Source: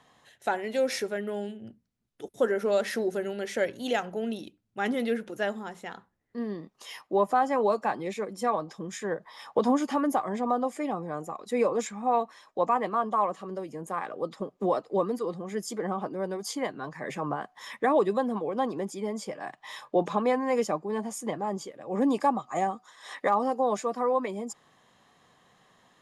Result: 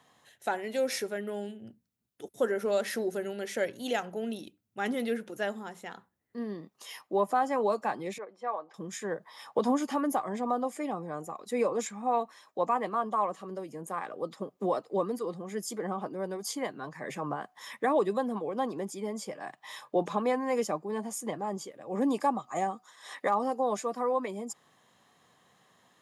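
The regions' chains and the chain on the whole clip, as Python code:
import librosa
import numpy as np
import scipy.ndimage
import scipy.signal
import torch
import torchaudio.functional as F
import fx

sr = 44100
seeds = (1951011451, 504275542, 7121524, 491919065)

y = fx.chain(x, sr, fx.bandpass_edges(low_hz=600.0, high_hz=3400.0),
    fx.high_shelf(hz=2100.0, db=-11.5), at=(8.18, 8.74))
y = scipy.signal.sosfilt(scipy.signal.butter(2, 72.0, 'highpass', fs=sr, output='sos'), y)
y = fx.high_shelf(y, sr, hz=10000.0, db=10.5)
y = y * 10.0 ** (-3.0 / 20.0)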